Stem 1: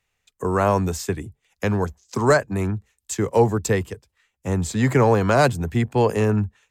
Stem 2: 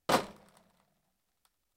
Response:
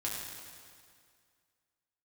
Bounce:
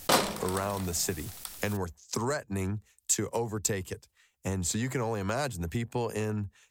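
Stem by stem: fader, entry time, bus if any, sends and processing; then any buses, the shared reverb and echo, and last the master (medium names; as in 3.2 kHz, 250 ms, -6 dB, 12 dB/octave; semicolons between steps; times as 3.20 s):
-3.0 dB, 0.00 s, no send, compression 6:1, threshold -26 dBFS, peak gain reduction 14 dB
+1.0 dB, 0.00 s, no send, level flattener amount 50%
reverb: none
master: treble shelf 3.7 kHz +10 dB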